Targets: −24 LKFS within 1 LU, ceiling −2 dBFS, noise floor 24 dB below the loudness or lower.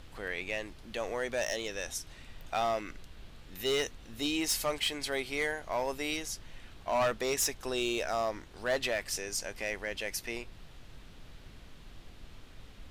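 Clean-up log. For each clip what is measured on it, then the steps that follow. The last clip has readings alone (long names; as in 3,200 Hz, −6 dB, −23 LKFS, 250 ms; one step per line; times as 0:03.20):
share of clipped samples 0.6%; peaks flattened at −24.0 dBFS; background noise floor −52 dBFS; target noise floor −58 dBFS; integrated loudness −33.5 LKFS; sample peak −24.0 dBFS; target loudness −24.0 LKFS
→ clipped peaks rebuilt −24 dBFS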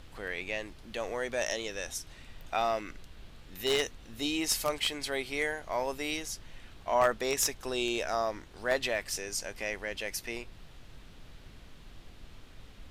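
share of clipped samples 0.0%; background noise floor −52 dBFS; target noise floor −57 dBFS
→ noise reduction from a noise print 6 dB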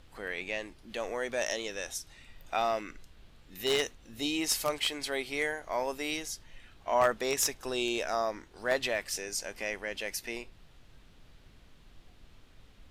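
background noise floor −58 dBFS; integrated loudness −32.5 LKFS; sample peak −15.0 dBFS; target loudness −24.0 LKFS
→ level +8.5 dB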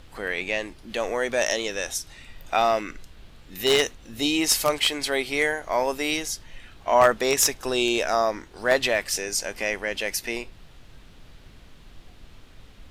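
integrated loudness −24.0 LKFS; sample peak −6.5 dBFS; background noise floor −50 dBFS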